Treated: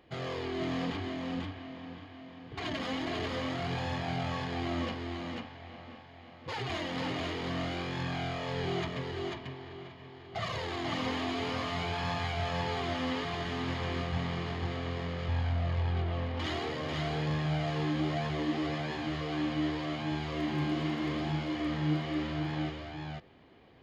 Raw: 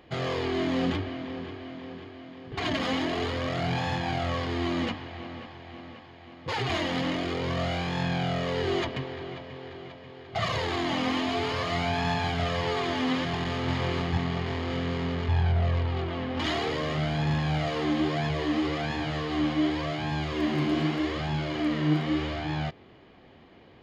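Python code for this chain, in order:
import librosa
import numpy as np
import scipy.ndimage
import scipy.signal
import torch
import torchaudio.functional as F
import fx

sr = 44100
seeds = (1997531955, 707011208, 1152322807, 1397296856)

y = x + 10.0 ** (-3.0 / 20.0) * np.pad(x, (int(492 * sr / 1000.0), 0))[:len(x)]
y = y * 10.0 ** (-7.0 / 20.0)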